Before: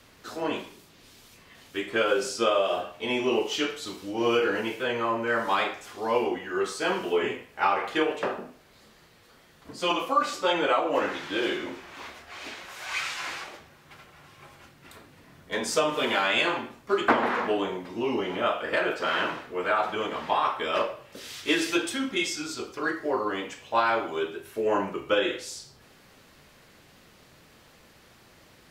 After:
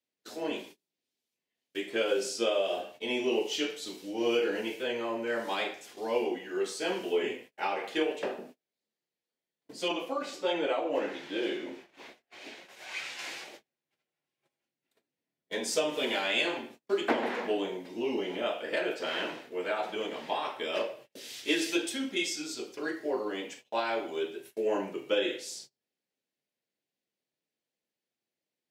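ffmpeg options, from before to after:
ffmpeg -i in.wav -filter_complex "[0:a]asettb=1/sr,asplit=3[link_01][link_02][link_03];[link_01]atrim=end=9.884[link_04];[link_02]atrim=start=9.88:end=13.19,asetpts=PTS-STARTPTS,afade=type=in:duration=0.004:curve=qsin,afade=type=out:start_time=3.306:duration=0.004:curve=qsin,highshelf=frequency=3600:gain=-8[link_05];[link_03]atrim=start=13.186[link_06];[link_04][link_05]acrossfade=duration=0.004:curve1=hsin:curve2=qsin[link_07];[link_07][link_06]acrossfade=duration=0.004:curve1=qsin:curve2=hsin,agate=range=-31dB:threshold=-44dB:ratio=16:detection=peak,highpass=230,equalizer=frequency=1200:width_type=o:width=0.86:gain=-12.5,volume=-2dB" out.wav

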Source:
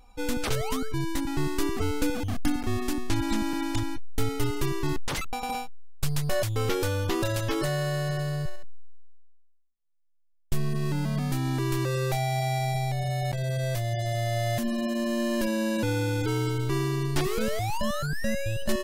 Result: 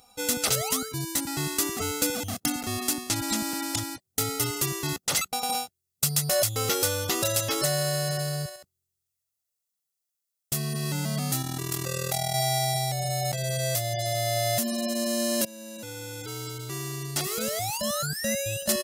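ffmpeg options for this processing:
ffmpeg -i in.wav -filter_complex "[0:a]asettb=1/sr,asplit=3[link_01][link_02][link_03];[link_01]atrim=end=11.424[link_04];[link_02]atrim=start=11.42:end=12.35,asetpts=PTS-STARTPTS,afade=type=in:duration=0.004:curve=qsin,afade=type=out:start_time=0.926:duration=0.004:curve=qsin,tremolo=f=40:d=0.788[link_05];[link_03]atrim=start=12.346[link_06];[link_04][link_05]acrossfade=duration=0.004:curve1=hsin:curve2=qsin[link_07];[link_07][link_06]acrossfade=duration=0.004:curve1=qsin:curve2=hsin,asplit=2[link_08][link_09];[link_08]atrim=end=15.45,asetpts=PTS-STARTPTS,afade=type=out:start_time=15.446:duration=0.004:curve=hsin:silence=0.125893[link_10];[link_09]atrim=start=15.45,asetpts=PTS-STARTPTS,afade=type=in:duration=3.04:silence=0.125893[link_11];[link_10][link_11]concat=n=2:v=0:a=1,highpass=160,bass=frequency=250:gain=1,treble=frequency=4000:gain=13,aecho=1:1:1.5:0.43" out.wav

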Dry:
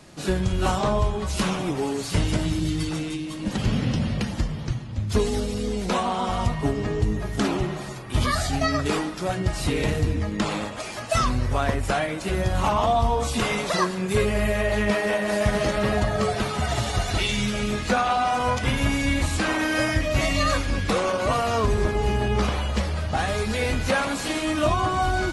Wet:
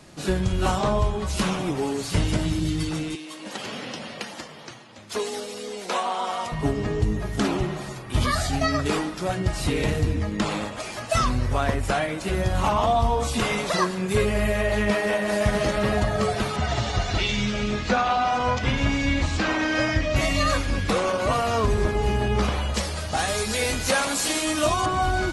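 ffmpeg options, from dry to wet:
ffmpeg -i in.wav -filter_complex "[0:a]asettb=1/sr,asplit=3[link_01][link_02][link_03];[link_01]atrim=end=3.154[link_04];[link_02]atrim=start=3.15:end=6.52,asetpts=PTS-STARTPTS,afade=type=in:duration=0.004:curve=qsin,afade=type=out:start_time=3.366:duration=0.004:curve=qsin,highpass=470[link_05];[link_03]atrim=start=6.516[link_06];[link_04][link_05]acrossfade=duration=0.004:curve1=hsin:curve2=qsin[link_07];[link_07][link_06]acrossfade=duration=0.004:curve1=qsin:curve2=hsin,asettb=1/sr,asplit=3[link_08][link_09][link_10];[link_08]atrim=end=16.564[link_11];[link_09]atrim=start=16.56:end=20.16,asetpts=PTS-STARTPTS,afade=type=in:duration=0.004:curve=qsin,afade=type=out:start_time=3.596:duration=0.004:curve=qsin,lowpass=frequency=6600:width=0.5412,lowpass=frequency=6600:width=1.3066[link_12];[link_10]atrim=start=20.156[link_13];[link_11][link_12]acrossfade=duration=0.004:curve1=hsin:curve2=qsin[link_14];[link_14][link_13]acrossfade=duration=0.004:curve1=qsin:curve2=hsin,asettb=1/sr,asplit=3[link_15][link_16][link_17];[link_15]atrim=end=22.744[link_18];[link_16]atrim=start=22.74:end=24.86,asetpts=PTS-STARTPTS,afade=type=in:duration=0.004:curve=qsin,afade=type=out:start_time=2.116:duration=0.004:curve=qsin,bass=frequency=250:gain=-5,treble=frequency=4000:gain=10[link_19];[link_17]atrim=start=24.856[link_20];[link_18][link_19]acrossfade=duration=0.004:curve1=hsin:curve2=qsin[link_21];[link_21][link_20]acrossfade=duration=0.004:curve1=qsin:curve2=hsin" out.wav

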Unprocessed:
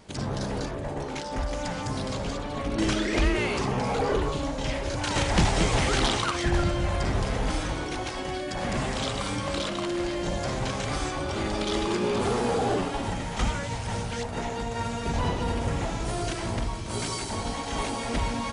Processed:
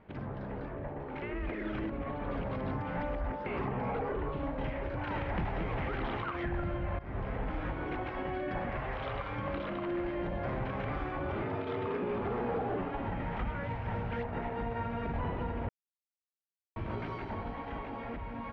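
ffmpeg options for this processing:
ffmpeg -i in.wav -filter_complex "[0:a]asettb=1/sr,asplit=3[link_01][link_02][link_03];[link_01]atrim=end=8.704[link_04];[link_02]atrim=start=8.7:end=9.39,asetpts=PTS-STARTPTS,afade=type=in:duration=0.004:curve=qsin,afade=type=out:start_time=0.686:duration=0.004:curve=qsin,equalizer=frequency=220:width_type=o:width=1.1:gain=-12[link_05];[link_03]atrim=start=9.386[link_06];[link_04][link_05]acrossfade=duration=0.004:curve1=hsin:curve2=qsin[link_07];[link_07][link_06]acrossfade=duration=0.004:curve1=qsin:curve2=hsin,asettb=1/sr,asplit=3[link_08][link_09][link_10];[link_08]atrim=end=11.424[link_11];[link_09]atrim=start=11.42:end=12.02,asetpts=PTS-STARTPTS,afade=type=in:duration=0.004:curve=qsin,afade=type=out:start_time=0.596:duration=0.004:curve=qsin,afreqshift=56[link_12];[link_10]atrim=start=12.016[link_13];[link_11][link_12]acrossfade=duration=0.004:curve1=hsin:curve2=qsin[link_14];[link_14][link_13]acrossfade=duration=0.004:curve1=qsin:curve2=hsin,asplit=6[link_15][link_16][link_17][link_18][link_19][link_20];[link_15]atrim=end=1.222[link_21];[link_16]atrim=start=1.218:end=3.462,asetpts=PTS-STARTPTS,areverse[link_22];[link_17]atrim=start=3.458:end=6.99,asetpts=PTS-STARTPTS,afade=type=out:start_time=3.528:duration=0.004:curve=hsin:silence=0.133352[link_23];[link_18]atrim=start=6.99:end=15.69,asetpts=PTS-STARTPTS,afade=type=in:duration=0.44:silence=0.133352,afade=type=out:start_time=8.696:duration=0.004:curve=hsin[link_24];[link_19]atrim=start=15.69:end=16.76,asetpts=PTS-STARTPTS,volume=0[link_25];[link_20]atrim=start=16.76,asetpts=PTS-STARTPTS,afade=type=in:duration=0.004:curve=hsin[link_26];[link_21][link_22]acrossfade=duration=0.004:curve1=hsin:curve2=hsin[link_27];[link_23][link_24][link_25][link_26]concat=n=4:v=0:a=1[link_28];[link_27][link_28]acrossfade=duration=0.004:curve1=hsin:curve2=hsin,lowpass=frequency=2300:width=0.5412,lowpass=frequency=2300:width=1.3066,alimiter=level_in=1dB:limit=-24dB:level=0:latency=1:release=311,volume=-1dB,dynaudnorm=framelen=190:gausssize=17:maxgain=4.5dB,volume=-5.5dB" out.wav

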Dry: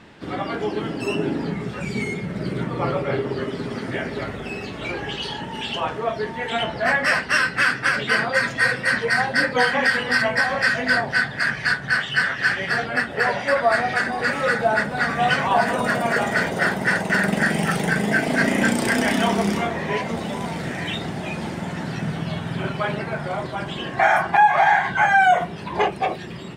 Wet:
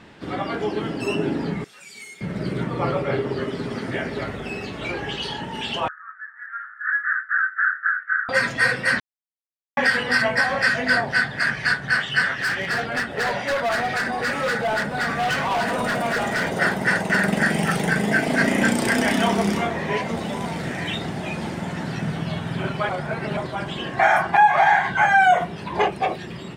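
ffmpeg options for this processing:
ffmpeg -i in.wav -filter_complex "[0:a]asettb=1/sr,asplit=3[link_01][link_02][link_03];[link_01]atrim=end=1.644[link_04];[link_02]atrim=start=1.64:end=2.21,asetpts=PTS-STARTPTS,afade=type=in:duration=0.004:curve=qsin,afade=type=out:start_time=0.566:duration=0.004:curve=qsin,aderivative[link_05];[link_03]atrim=start=2.206[link_06];[link_04][link_05]acrossfade=duration=0.004:curve1=hsin:curve2=qsin[link_07];[link_07][link_06]acrossfade=duration=0.004:curve1=qsin:curve2=hsin,asettb=1/sr,asplit=3[link_08][link_09][link_10];[link_08]atrim=end=5.884[link_11];[link_09]atrim=start=5.88:end=8.29,asetpts=PTS-STARTPTS,afade=type=in:duration=0.004:curve=qsin,afade=type=out:start_time=2.406:duration=0.004:curve=qsin,asuperpass=centerf=1500:order=8:qfactor=2.8[link_12];[link_10]atrim=start=8.286[link_13];[link_11][link_12]acrossfade=duration=0.004:curve1=hsin:curve2=qsin[link_14];[link_14][link_13]acrossfade=duration=0.004:curve1=qsin:curve2=hsin,asettb=1/sr,asplit=3[link_15][link_16][link_17];[link_15]atrim=end=12.334[link_18];[link_16]atrim=start=12.33:end=16.43,asetpts=PTS-STARTPTS,afade=type=in:duration=0.004:curve=qsin,afade=type=out:start_time=4.096:duration=0.004:curve=qsin,volume=19.5dB,asoftclip=hard,volume=-19.5dB[link_19];[link_17]atrim=start=16.426[link_20];[link_18][link_19]acrossfade=duration=0.004:curve1=hsin:curve2=qsin[link_21];[link_21][link_20]acrossfade=duration=0.004:curve1=qsin:curve2=hsin,asplit=5[link_22][link_23][link_24][link_25][link_26];[link_22]atrim=end=9,asetpts=PTS-STARTPTS,afade=type=out:start_time=8.996:duration=0.004:curve=hsin[link_27];[link_23]atrim=start=9:end=9.77,asetpts=PTS-STARTPTS,volume=0[link_28];[link_24]atrim=start=9.77:end=22.892,asetpts=PTS-STARTPTS,afade=type=in:duration=0.004:curve=hsin[link_29];[link_25]atrim=start=22.888:end=23.372,asetpts=PTS-STARTPTS,areverse[link_30];[link_26]atrim=start=23.368[link_31];[link_27][link_28][link_29]concat=n=3:v=0:a=1[link_32];[link_32][link_30]acrossfade=duration=0.004:curve1=hsin:curve2=hsin[link_33];[link_33][link_31]acrossfade=duration=0.004:curve1=hsin:curve2=hsin" out.wav

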